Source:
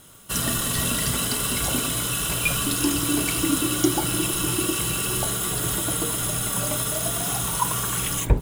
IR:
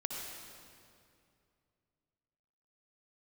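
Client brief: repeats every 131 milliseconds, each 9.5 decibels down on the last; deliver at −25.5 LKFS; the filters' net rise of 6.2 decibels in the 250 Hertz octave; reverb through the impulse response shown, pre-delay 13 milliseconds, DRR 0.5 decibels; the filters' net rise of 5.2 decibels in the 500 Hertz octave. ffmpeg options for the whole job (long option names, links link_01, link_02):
-filter_complex "[0:a]equalizer=frequency=250:width_type=o:gain=6.5,equalizer=frequency=500:width_type=o:gain=4.5,aecho=1:1:131|262|393|524:0.335|0.111|0.0365|0.012,asplit=2[link_01][link_02];[1:a]atrim=start_sample=2205,adelay=13[link_03];[link_02][link_03]afir=irnorm=-1:irlink=0,volume=-2dB[link_04];[link_01][link_04]amix=inputs=2:normalize=0,volume=-8dB"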